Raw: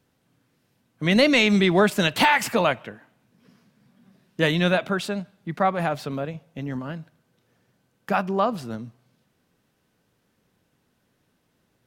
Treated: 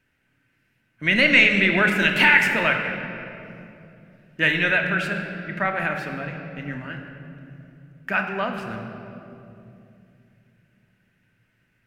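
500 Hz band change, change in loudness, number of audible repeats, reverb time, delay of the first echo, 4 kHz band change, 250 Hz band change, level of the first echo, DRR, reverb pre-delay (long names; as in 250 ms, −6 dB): −4.5 dB, +2.5 dB, no echo audible, 2.7 s, no echo audible, +0.5 dB, −3.5 dB, no echo audible, 3.0 dB, 3 ms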